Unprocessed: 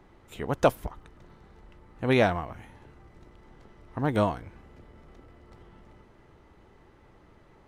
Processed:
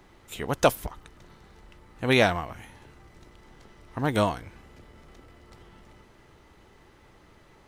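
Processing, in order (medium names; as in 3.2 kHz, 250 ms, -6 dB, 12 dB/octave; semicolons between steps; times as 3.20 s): treble shelf 2.3 kHz +11 dB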